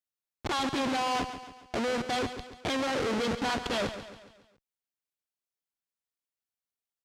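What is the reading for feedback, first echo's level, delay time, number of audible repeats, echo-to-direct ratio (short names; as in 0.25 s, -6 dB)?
48%, -11.0 dB, 0.139 s, 4, -10.0 dB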